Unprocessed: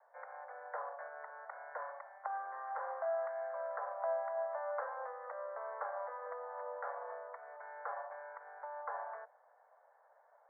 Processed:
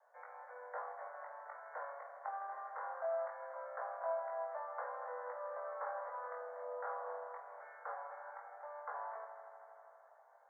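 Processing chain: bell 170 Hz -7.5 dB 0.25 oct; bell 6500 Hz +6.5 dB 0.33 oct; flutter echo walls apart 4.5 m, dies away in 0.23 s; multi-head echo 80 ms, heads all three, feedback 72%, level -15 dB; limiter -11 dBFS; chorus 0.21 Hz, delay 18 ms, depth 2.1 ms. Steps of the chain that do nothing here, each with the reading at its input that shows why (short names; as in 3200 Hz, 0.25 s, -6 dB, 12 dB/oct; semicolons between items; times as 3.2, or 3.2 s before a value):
bell 170 Hz: input band starts at 430 Hz; bell 6500 Hz: input band ends at 1800 Hz; limiter -11 dBFS: input peak -26.0 dBFS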